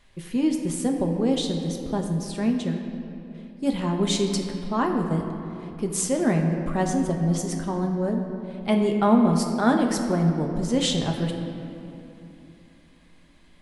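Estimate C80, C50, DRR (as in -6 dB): 5.5 dB, 4.5 dB, 2.0 dB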